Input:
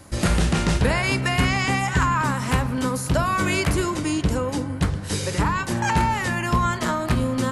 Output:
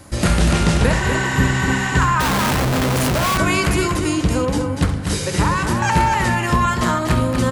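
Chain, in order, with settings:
0:00.95–0:01.89: healed spectral selection 640–11,000 Hz after
loudspeakers that aren't time-aligned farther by 23 metres −11 dB, 83 metres −6 dB
0:02.20–0:03.38: comparator with hysteresis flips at −30.5 dBFS
level +3.5 dB

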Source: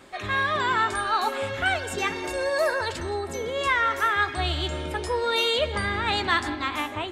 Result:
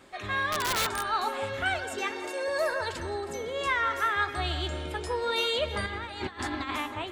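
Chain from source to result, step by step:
0:01.84–0:02.48: elliptic high-pass filter 230 Hz
0:05.86–0:06.79: compressor whose output falls as the input rises −30 dBFS, ratio −0.5
delay that swaps between a low-pass and a high-pass 160 ms, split 1,600 Hz, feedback 52%, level −11 dB
0:00.52–0:01.09: wrap-around overflow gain 16.5 dB
level −4.5 dB

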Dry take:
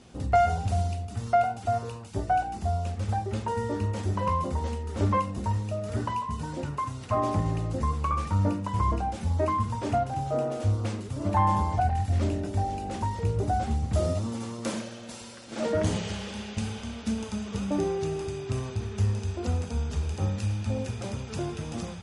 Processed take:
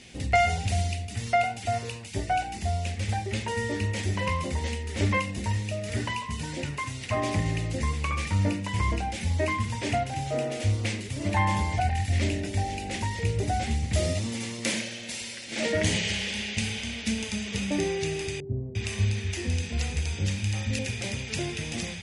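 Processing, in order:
high shelf with overshoot 1,600 Hz +8 dB, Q 3
0:18.40–0:20.79: multiband delay without the direct sound lows, highs 350 ms, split 540 Hz

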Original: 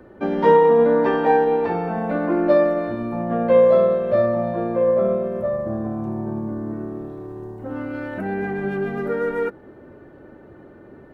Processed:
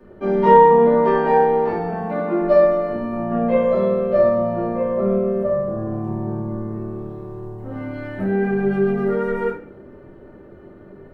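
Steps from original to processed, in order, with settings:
0:01.87–0:02.39: high-pass filter 44 Hz → 130 Hz
convolution reverb RT60 0.50 s, pre-delay 4 ms, DRR −8 dB
level −8.5 dB

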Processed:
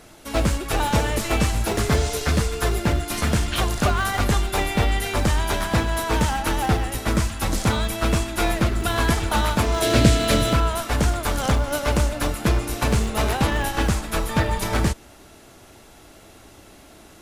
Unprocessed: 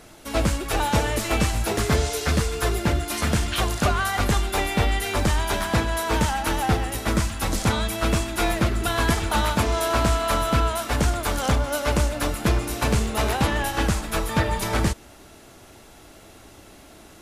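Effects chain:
0:09.82–0:10.53: octave-band graphic EQ 125/250/500/1,000/2,000/4,000/8,000 Hz +10/+6/+8/−12/+5/+6/+4 dB
in parallel at −10.5 dB: comparator with hysteresis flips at −19.5 dBFS

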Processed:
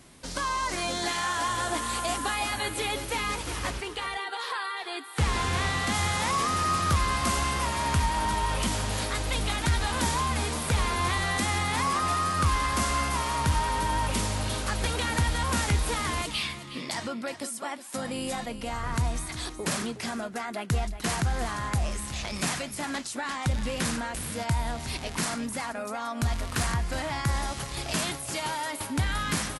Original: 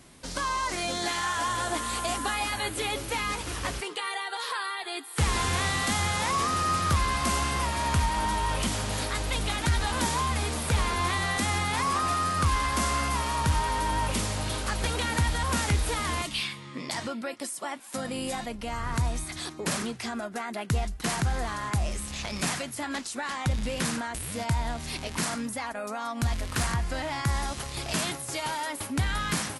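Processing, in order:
0:03.70–0:05.94: high-shelf EQ 6,800 Hz −8.5 dB
single-tap delay 366 ms −12.5 dB

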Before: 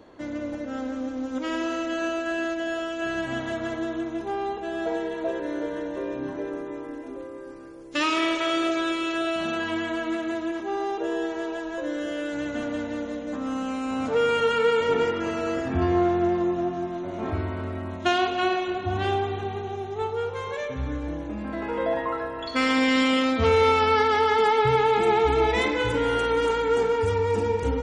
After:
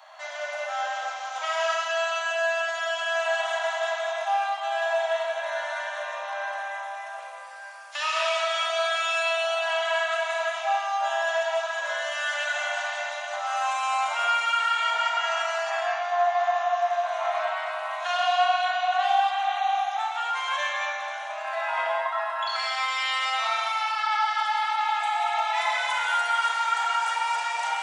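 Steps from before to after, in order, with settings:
Chebyshev high-pass filter 620 Hz, order 8
dynamic equaliser 2,300 Hz, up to −3 dB, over −37 dBFS, Q 0.96
downward compressor 4 to 1, threshold −33 dBFS, peak gain reduction 10.5 dB
brickwall limiter −28 dBFS, peak gain reduction 8.5 dB
reverb whose tail is shaped and stops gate 290 ms flat, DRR −3.5 dB
level +6.5 dB

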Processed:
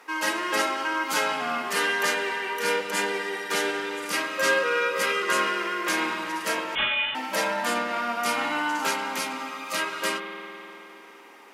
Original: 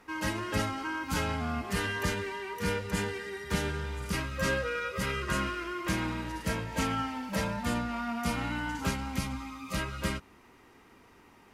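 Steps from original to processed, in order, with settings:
Bessel high-pass filter 480 Hz, order 4
spring reverb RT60 3.3 s, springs 50 ms, chirp 80 ms, DRR 5.5 dB
0:06.75–0:07.15: voice inversion scrambler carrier 3,800 Hz
level +8.5 dB

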